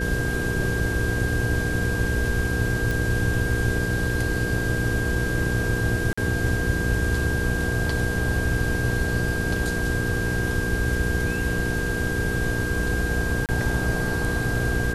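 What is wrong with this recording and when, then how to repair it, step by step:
hum 60 Hz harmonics 8 -29 dBFS
tone 1600 Hz -28 dBFS
2.91 pop
6.13–6.17 gap 45 ms
13.46–13.49 gap 28 ms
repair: de-click; de-hum 60 Hz, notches 8; notch 1600 Hz, Q 30; interpolate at 6.13, 45 ms; interpolate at 13.46, 28 ms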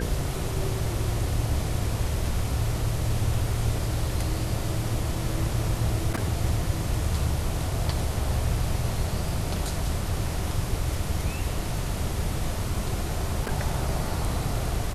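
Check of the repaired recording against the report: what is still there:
none

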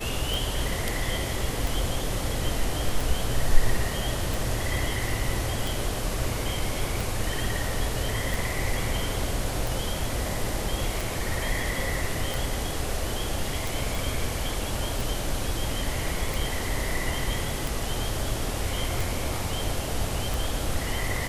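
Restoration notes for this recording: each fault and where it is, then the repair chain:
tick 45 rpm
13.95 pop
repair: de-click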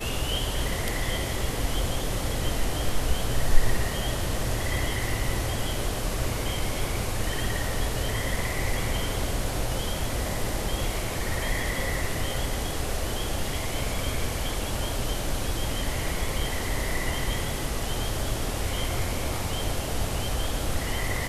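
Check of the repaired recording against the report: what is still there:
none

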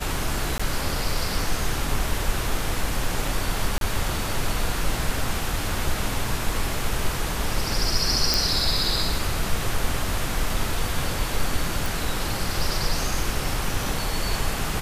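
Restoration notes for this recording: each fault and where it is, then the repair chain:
0.58–0.59 gap 15 ms
3.78–3.81 gap 32 ms
8.34 pop
11.86 pop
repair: de-click; interpolate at 0.58, 15 ms; interpolate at 3.78, 32 ms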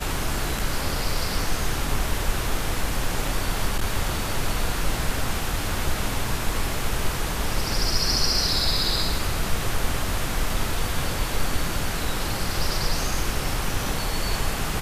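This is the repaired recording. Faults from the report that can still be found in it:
none

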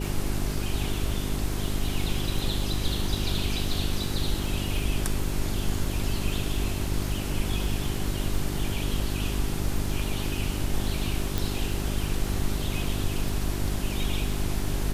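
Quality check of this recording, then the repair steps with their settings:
crackle 21/s -33 dBFS
hum 50 Hz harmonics 8 -31 dBFS
11.38 pop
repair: de-click; de-hum 50 Hz, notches 8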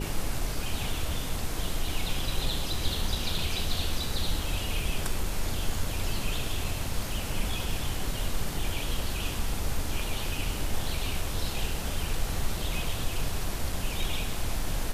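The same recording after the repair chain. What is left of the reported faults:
11.38 pop

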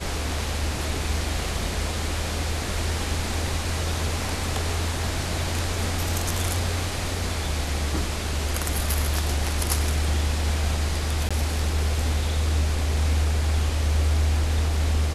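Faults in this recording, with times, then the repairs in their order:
11.29–11.31 gap 16 ms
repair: interpolate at 11.29, 16 ms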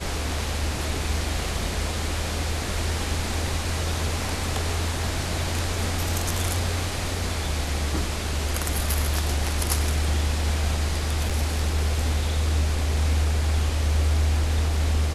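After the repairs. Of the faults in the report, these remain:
none

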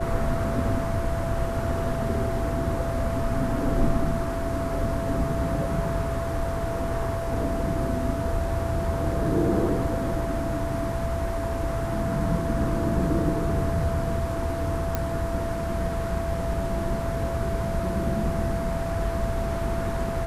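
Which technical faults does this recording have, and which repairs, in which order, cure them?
tone 670 Hz -30 dBFS
14.95 pop -11 dBFS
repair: de-click; notch 670 Hz, Q 30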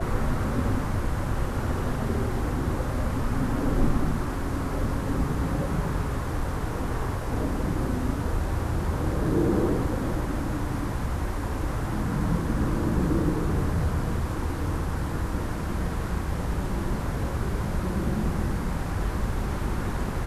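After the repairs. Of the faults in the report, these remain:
none

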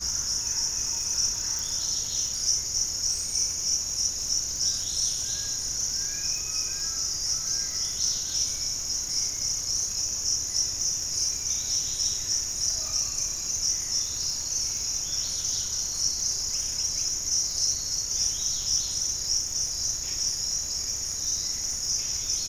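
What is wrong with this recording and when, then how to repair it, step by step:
crackle 43/s -32 dBFS
1.59 pop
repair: de-click

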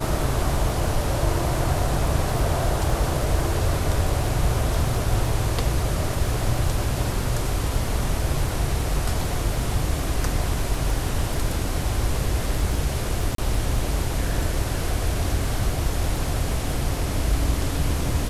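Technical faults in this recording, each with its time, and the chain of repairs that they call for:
crackle 21/s -29 dBFS
13.35–13.38 gap 33 ms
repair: de-click; interpolate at 13.35, 33 ms

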